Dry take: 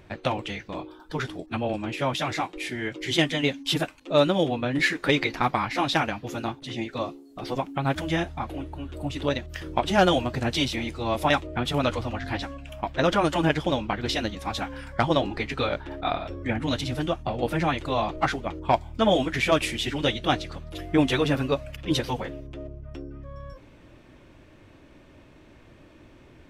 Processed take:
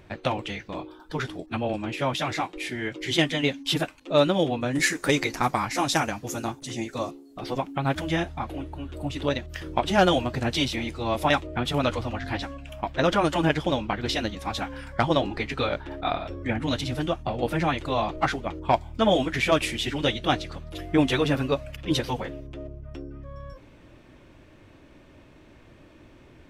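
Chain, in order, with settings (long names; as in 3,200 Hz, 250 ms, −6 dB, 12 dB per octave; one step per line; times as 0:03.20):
0:04.61–0:07.11: high shelf with overshoot 5,000 Hz +10 dB, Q 1.5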